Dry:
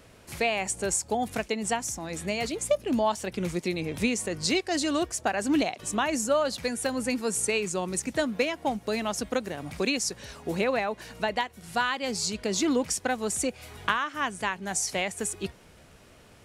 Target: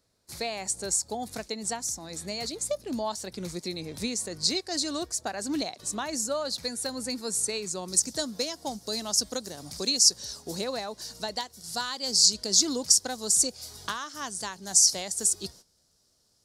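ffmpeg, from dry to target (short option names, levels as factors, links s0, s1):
-af "agate=range=0.178:threshold=0.00501:ratio=16:detection=peak,asetnsamples=n=441:p=0,asendcmd='7.88 highshelf g 12',highshelf=f=3500:t=q:w=3:g=6,volume=0.501"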